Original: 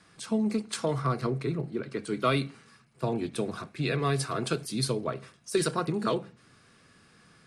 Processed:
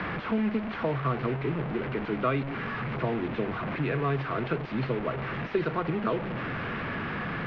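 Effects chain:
linear delta modulator 32 kbit/s, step −27.5 dBFS
low-pass filter 2,500 Hz 24 dB per octave
multiband upward and downward compressor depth 40%

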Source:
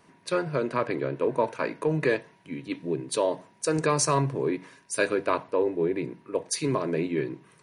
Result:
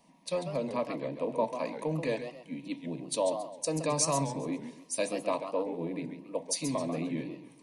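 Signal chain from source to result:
phaser with its sweep stopped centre 390 Hz, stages 6
feedback echo with a swinging delay time 135 ms, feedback 34%, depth 213 cents, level −9 dB
level −2 dB

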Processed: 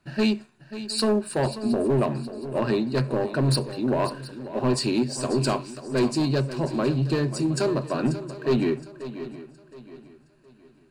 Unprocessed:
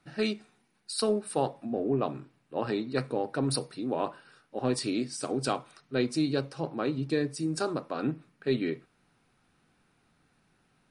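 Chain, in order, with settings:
low-shelf EQ 280 Hz +5 dB
gain into a clipping stage and back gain 20.5 dB
EQ curve with evenly spaced ripples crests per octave 1.4, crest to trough 8 dB
leveller curve on the samples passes 1
on a send: feedback echo with a long and a short gap by turns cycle 717 ms, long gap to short 3 to 1, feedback 33%, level −13 dB
on the sum: level +1.5 dB

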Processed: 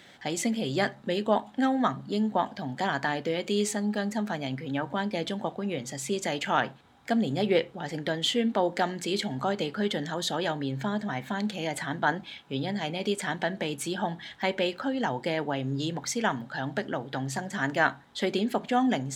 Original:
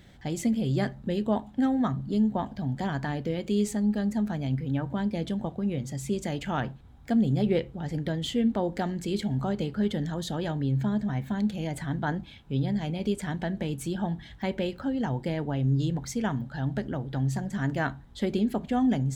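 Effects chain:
meter weighting curve A
level +6.5 dB

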